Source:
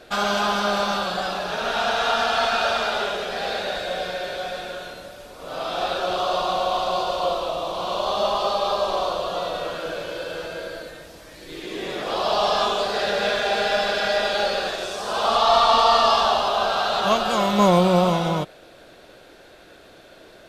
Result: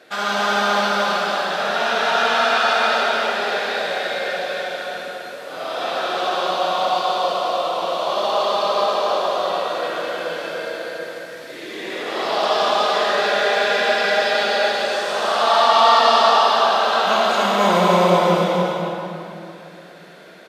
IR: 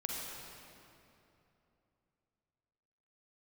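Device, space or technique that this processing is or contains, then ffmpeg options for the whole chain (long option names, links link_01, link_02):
stadium PA: -filter_complex "[0:a]highpass=220,equalizer=frequency=1900:width_type=o:width=0.54:gain=6.5,aecho=1:1:207|288.6:0.282|0.631[link_01];[1:a]atrim=start_sample=2205[link_02];[link_01][link_02]afir=irnorm=-1:irlink=0,volume=-1dB"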